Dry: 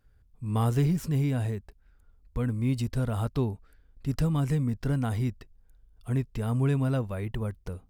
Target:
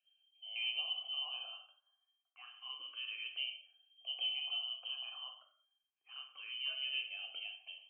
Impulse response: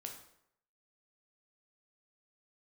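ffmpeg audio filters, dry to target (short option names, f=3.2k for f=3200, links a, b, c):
-filter_complex "[0:a]lowpass=f=2.7k:t=q:w=0.5098,lowpass=f=2.7k:t=q:w=0.6013,lowpass=f=2.7k:t=q:w=0.9,lowpass=f=2.7k:t=q:w=2.563,afreqshift=-3200,asplit=3[a][b][c];[a]bandpass=f=730:t=q:w=8,volume=0dB[d];[b]bandpass=f=1.09k:t=q:w=8,volume=-6dB[e];[c]bandpass=f=2.44k:t=q:w=8,volume=-9dB[f];[d][e][f]amix=inputs=3:normalize=0[g];[1:a]atrim=start_sample=2205,afade=t=out:st=0.3:d=0.01,atrim=end_sample=13671,asetrate=48510,aresample=44100[h];[g][h]afir=irnorm=-1:irlink=0,asplit=2[i][j];[j]afreqshift=0.28[k];[i][k]amix=inputs=2:normalize=1,volume=7.5dB"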